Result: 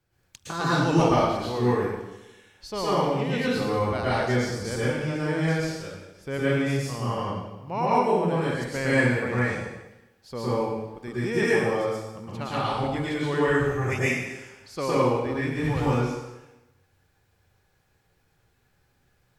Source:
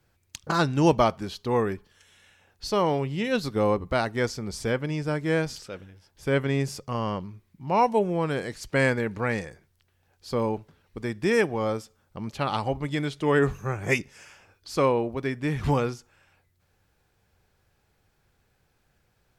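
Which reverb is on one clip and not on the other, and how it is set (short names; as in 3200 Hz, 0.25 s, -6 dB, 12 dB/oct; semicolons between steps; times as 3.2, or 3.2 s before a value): plate-style reverb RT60 1 s, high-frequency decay 0.95×, pre-delay 0.1 s, DRR -9 dB; gain -8 dB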